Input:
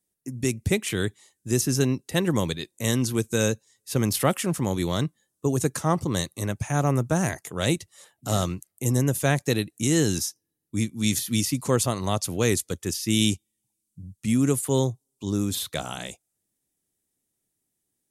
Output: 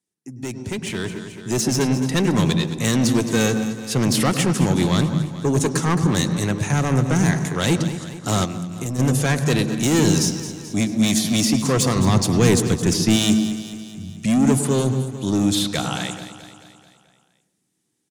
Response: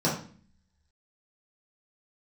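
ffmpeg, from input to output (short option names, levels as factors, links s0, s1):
-filter_complex "[0:a]highpass=120,lowpass=7700,equalizer=f=600:t=o:w=0.48:g=-7,asoftclip=type=tanh:threshold=0.0631,aecho=1:1:217|434|651|868|1085|1302:0.237|0.133|0.0744|0.0416|0.0233|0.0131,dynaudnorm=f=240:g=11:m=3.16,asplit=2[s0][s1];[1:a]atrim=start_sample=2205,lowpass=6800,adelay=100[s2];[s1][s2]afir=irnorm=-1:irlink=0,volume=0.0631[s3];[s0][s3]amix=inputs=2:normalize=0,asplit=3[s4][s5][s6];[s4]afade=t=out:st=8.44:d=0.02[s7];[s5]acompressor=threshold=0.0562:ratio=5,afade=t=in:st=8.44:d=0.02,afade=t=out:st=8.98:d=0.02[s8];[s6]afade=t=in:st=8.98:d=0.02[s9];[s7][s8][s9]amix=inputs=3:normalize=0,asettb=1/sr,asplit=3[s10][s11][s12];[s10]atrim=end=11.964[s13];[s11]atrim=start=11.96:end=13.16,asetpts=PTS-STARTPTS,afade=t=in:d=0.004:c=qsin,afade=t=out:st=1.196:d=0.004:c=qsin,lowshelf=f=190:g=9[s14];[s12]atrim=start=13.156[s15];[s13][s14]acrossfade=d=0.004:c1=hsin:c2=qsin[s16];[s16][s15]acrossfade=d=0.004:c1=qsin:c2=hsin"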